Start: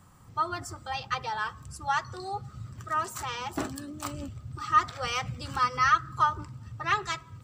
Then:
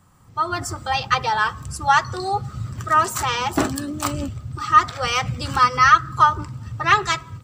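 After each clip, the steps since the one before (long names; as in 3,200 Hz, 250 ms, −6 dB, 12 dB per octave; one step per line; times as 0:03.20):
automatic gain control gain up to 12.5 dB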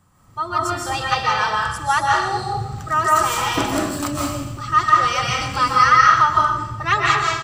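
repeating echo 124 ms, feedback 46%, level −12 dB
convolution reverb RT60 0.60 s, pre-delay 115 ms, DRR −3 dB
level −3 dB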